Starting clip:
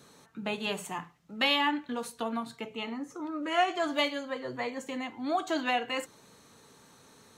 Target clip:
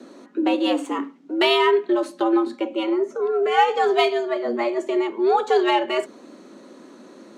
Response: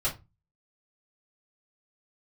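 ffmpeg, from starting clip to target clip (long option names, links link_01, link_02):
-af "equalizer=frequency=130:width=0.33:gain=14.5,afreqshift=110,adynamicsmooth=sensitivity=4.5:basefreq=7100,volume=5dB"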